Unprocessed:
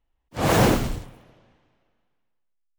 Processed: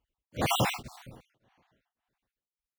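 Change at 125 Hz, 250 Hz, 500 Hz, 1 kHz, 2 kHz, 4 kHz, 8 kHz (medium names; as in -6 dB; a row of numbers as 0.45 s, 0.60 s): -11.0 dB, -13.0 dB, -11.5 dB, -6.5 dB, -6.5 dB, -2.5 dB, -6.5 dB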